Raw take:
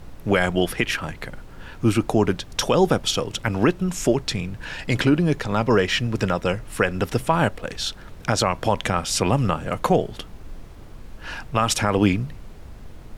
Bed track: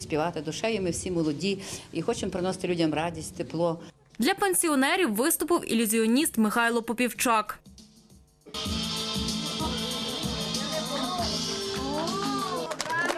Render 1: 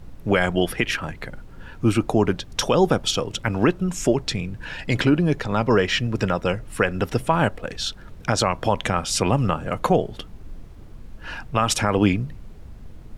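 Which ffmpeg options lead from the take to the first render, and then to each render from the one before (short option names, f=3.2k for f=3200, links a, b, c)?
-af "afftdn=nr=6:nf=-41"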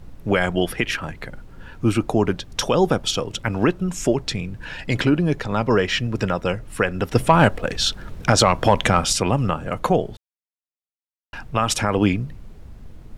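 -filter_complex "[0:a]asettb=1/sr,asplit=3[a][b][c];[a]atrim=end=7.154[d];[b]atrim=start=7.15:end=9.13,asetpts=PTS-STARTPTS,afade=t=in:d=0.004:c=qsin,afade=t=out:st=1.976:d=0.004:c=qsin,acontrast=63[e];[c]atrim=start=9.126[f];[d][e]acrossfade=d=0.004:c1=hsin:c2=qsin[g];[g][f]acrossfade=d=0.004:c1=qsin:c2=hsin,asplit=3[h][i][j];[h]atrim=end=10.17,asetpts=PTS-STARTPTS,afade=t=out:st=10.166:d=0.004:c=hsin[k];[i]atrim=start=10.17:end=11.33,asetpts=PTS-STARTPTS,volume=0[l];[j]atrim=start=11.33,asetpts=PTS-STARTPTS,afade=t=in:d=0.004:c=hsin[m];[k][l][m]concat=n=3:v=0:a=1"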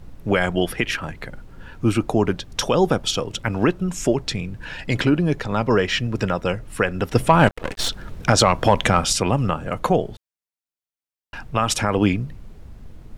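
-filter_complex "[0:a]asettb=1/sr,asplit=3[a][b][c];[a]atrim=end=7.474[d];[b]atrim=start=7.47:end=7.89,asetpts=PTS-STARTPTS,afade=t=in:d=0.004:c=qsin,afade=t=out:st=0.416:d=0.004:c=qsin,aeval=exprs='max(val(0),0)':c=same[e];[c]atrim=start=7.886[f];[d][e]acrossfade=d=0.004:c1=hsin:c2=qsin[g];[g][f]acrossfade=d=0.004:c1=qsin:c2=hsin"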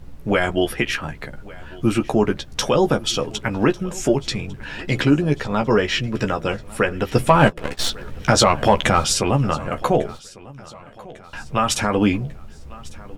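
-filter_complex "[0:a]asplit=2[a][b];[b]adelay=14,volume=-6dB[c];[a][c]amix=inputs=2:normalize=0,aecho=1:1:1149|2298|3447:0.0841|0.0404|0.0194"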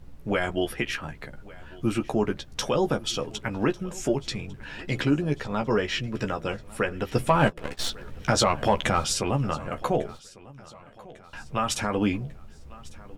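-af "volume=-7dB"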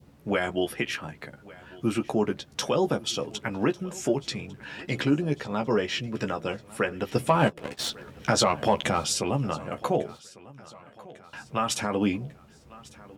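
-af "highpass=120,adynamicequalizer=threshold=0.00891:dfrequency=1500:dqfactor=1.4:tfrequency=1500:tqfactor=1.4:attack=5:release=100:ratio=0.375:range=2.5:mode=cutabove:tftype=bell"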